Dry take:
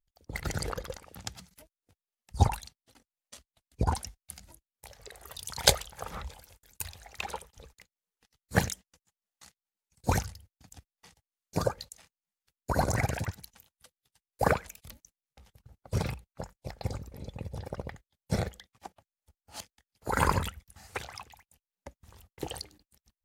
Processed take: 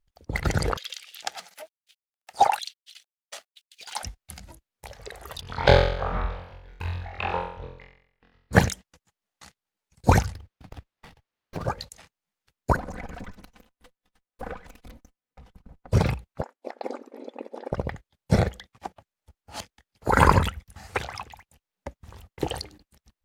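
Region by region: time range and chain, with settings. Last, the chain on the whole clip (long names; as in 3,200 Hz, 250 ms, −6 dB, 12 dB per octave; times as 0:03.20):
0:00.77–0:04.03: mu-law and A-law mismatch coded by mu + parametric band 1,000 Hz −11.5 dB 0.38 octaves + auto-filter high-pass square 1.1 Hz 780–3,200 Hz
0:05.41–0:08.53: high-frequency loss of the air 350 metres + flutter between parallel walls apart 3.9 metres, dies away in 0.64 s
0:10.35–0:11.68: downward compressor, threshold −38 dBFS + windowed peak hold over 5 samples
0:12.76–0:15.92: lower of the sound and its delayed copy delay 4 ms + high-shelf EQ 2,700 Hz −8 dB + downward compressor 2.5 to 1, threshold −49 dBFS
0:16.42–0:17.72: linear-phase brick-wall band-pass 230–13,000 Hz + high-shelf EQ 2,500 Hz −11.5 dB
whole clip: high-shelf EQ 5,000 Hz −10.5 dB; boost into a limiter +10.5 dB; level −1 dB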